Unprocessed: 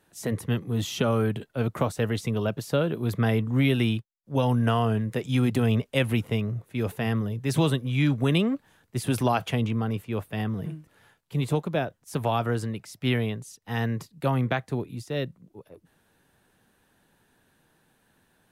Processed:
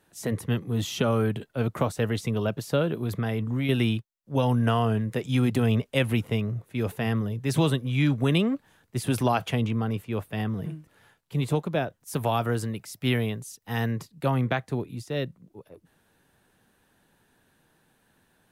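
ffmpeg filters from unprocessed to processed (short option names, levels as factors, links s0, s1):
-filter_complex "[0:a]asettb=1/sr,asplit=3[s0][s1][s2];[s0]atrim=end=3.014[s3];[s1]atrim=start=3.01:end=3.69,asetpts=PTS-STARTPTS,afade=t=in:d=0.004:c=qsin,afade=t=out:st=0.676:d=0.004:c=qsin,acompressor=threshold=0.0708:ratio=6:attack=3.2:release=140:knee=1:detection=peak[s4];[s2]atrim=start=3.686[s5];[s3][s4]acrossfade=d=0.004:c1=hsin:c2=qsin[s6];[s6][s5]acrossfade=d=0.004:c1=qsin:c2=hsin,asettb=1/sr,asplit=3[s7][s8][s9];[s7]atrim=end=12.004[s10];[s8]atrim=start=12:end=13.92,asetpts=PTS-STARTPTS,afade=t=in:d=0.004:c=qsin,afade=t=out:st=1.916:d=0.004:c=qsin,highshelf=f=10000:g=10[s11];[s9]atrim=start=13.916[s12];[s10][s11]acrossfade=d=0.004:c1=hsin:c2=qsin[s13];[s13][s12]acrossfade=d=0.004:c1=qsin:c2=hsin"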